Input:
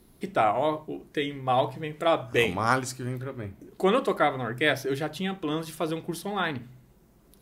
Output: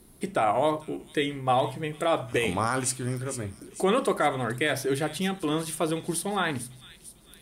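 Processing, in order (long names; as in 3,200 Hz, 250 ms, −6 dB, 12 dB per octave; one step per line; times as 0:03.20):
parametric band 9,200 Hz +12.5 dB 0.37 octaves
brickwall limiter −16 dBFS, peak gain reduction 9.5 dB
on a send: delay with a high-pass on its return 450 ms, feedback 48%, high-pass 4,100 Hz, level −8.5 dB
on the sum: level +2 dB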